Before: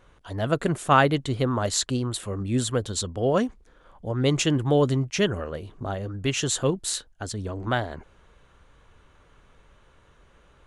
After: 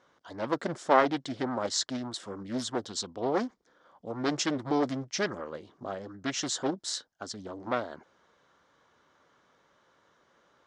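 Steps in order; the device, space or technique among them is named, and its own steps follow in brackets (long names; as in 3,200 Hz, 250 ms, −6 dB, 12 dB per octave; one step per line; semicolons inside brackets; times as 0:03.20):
full-range speaker at full volume (highs frequency-modulated by the lows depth 0.79 ms; loudspeaker in its box 250–7,000 Hz, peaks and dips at 420 Hz −4 dB, 2,600 Hz −9 dB, 5,300 Hz +6 dB)
level −4 dB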